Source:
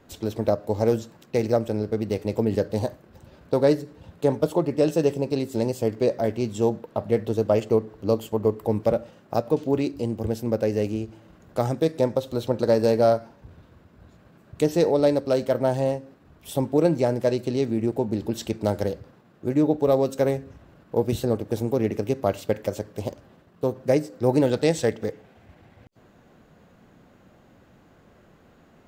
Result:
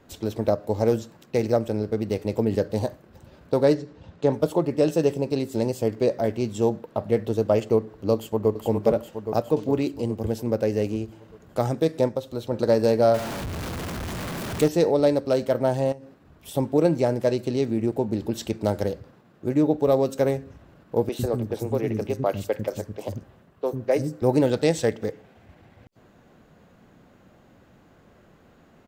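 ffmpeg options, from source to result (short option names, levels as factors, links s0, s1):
-filter_complex "[0:a]asettb=1/sr,asplit=3[s0][s1][s2];[s0]atrim=end=3.744[s3];[s1]atrim=start=3.74:end=4.33,asetpts=PTS-STARTPTS,afade=t=in:d=0.004:c=qsin,afade=t=out:st=0.586:d=0.004:c=qsin,lowpass=f=6700:w=0.5412,lowpass=f=6700:w=1.3066[s4];[s2]atrim=start=4.326[s5];[s3][s4]acrossfade=d=0.004:c1=hsin:c2=qsin[s6];[s6][s5]acrossfade=d=0.004:c1=qsin:c2=hsin,asplit=2[s7][s8];[s8]afade=t=in:st=8.14:d=0.01,afade=t=out:st=8.6:d=0.01,aecho=0:1:410|820|1230|1640|2050|2460|2870|3280|3690|4100:0.562341|0.365522|0.237589|0.154433|0.100381|0.0652479|0.0424112|0.0275673|0.0179187|0.0116472[s9];[s7][s9]amix=inputs=2:normalize=0,asettb=1/sr,asplit=3[s10][s11][s12];[s10]atrim=end=13.144[s13];[s11]atrim=start=13.14:end=14.68,asetpts=PTS-STARTPTS,afade=t=in:d=0.004:c=qsin,afade=t=out:st=1.536:d=0.004:c=qsin,aeval=exprs='val(0)+0.5*0.0501*sgn(val(0))':c=same[s14];[s12]atrim=start=14.676[s15];[s13][s14]acrossfade=d=0.004:c1=hsin:c2=qsin[s16];[s16][s15]acrossfade=d=0.004:c1=qsin:c2=hsin,asettb=1/sr,asplit=3[s17][s18][s19];[s17]atrim=end=15.924[s20];[s18]atrim=start=15.92:end=16.54,asetpts=PTS-STARTPTS,afade=t=in:d=0.004:c=qsin,afade=t=out:st=0.616:d=0.004:c=qsin,acompressor=threshold=0.0178:ratio=12:attack=3.2:release=140:knee=1:detection=peak[s21];[s19]atrim=start=16.536[s22];[s20][s21]acrossfade=d=0.004:c1=hsin:c2=qsin[s23];[s23][s22]acrossfade=d=0.004:c1=qsin:c2=hsin,asettb=1/sr,asplit=3[s24][s25][s26];[s24]atrim=end=21.094[s27];[s25]atrim=start=21.09:end=24.22,asetpts=PTS-STARTPTS,afade=t=in:d=0.004:c=qsin,afade=t=out:st=3.126:d=0.004:c=qsin,acrossover=split=290|4800[s28][s29][s30];[s30]adelay=30[s31];[s28]adelay=100[s32];[s32][s29][s31]amix=inputs=3:normalize=0,atrim=end_sample=138033[s33];[s26]atrim=start=24.216[s34];[s27][s33]acrossfade=d=0.004:c1=hsin:c2=qsin[s35];[s35][s34]acrossfade=d=0.004:c1=qsin:c2=hsin,asplit=3[s36][s37][s38];[s36]atrim=end=12.092[s39];[s37]atrim=start=12.088:end=12.522,asetpts=PTS-STARTPTS,volume=0.631[s40];[s38]atrim=start=12.518[s41];[s39][s40]acrossfade=d=0.004:c1=hsin:c2=hsin[s42];[s42][s41]acrossfade=d=0.004:c1=hsin:c2=hsin"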